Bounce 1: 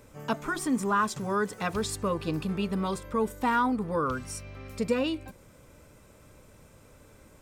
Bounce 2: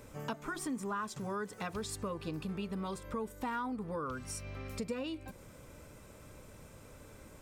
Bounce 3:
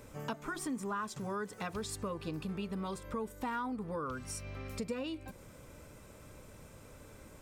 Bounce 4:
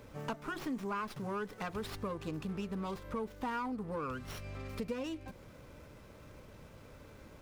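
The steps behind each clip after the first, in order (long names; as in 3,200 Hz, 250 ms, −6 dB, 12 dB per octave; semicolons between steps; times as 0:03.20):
downward compressor 3 to 1, threshold −40 dBFS, peak gain reduction 14 dB; level +1 dB
no processing that can be heard
windowed peak hold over 5 samples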